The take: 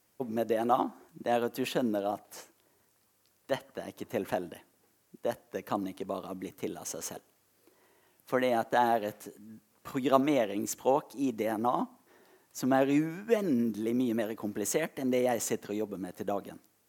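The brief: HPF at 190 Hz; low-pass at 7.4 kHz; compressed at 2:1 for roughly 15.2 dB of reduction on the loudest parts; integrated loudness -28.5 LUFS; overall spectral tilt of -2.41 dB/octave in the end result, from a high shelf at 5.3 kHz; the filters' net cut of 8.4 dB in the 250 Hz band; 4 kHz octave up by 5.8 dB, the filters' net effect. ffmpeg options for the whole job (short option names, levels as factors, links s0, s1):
-af "highpass=190,lowpass=7400,equalizer=f=250:t=o:g=-9,equalizer=f=4000:t=o:g=6,highshelf=f=5300:g=5.5,acompressor=threshold=0.00355:ratio=2,volume=6.68"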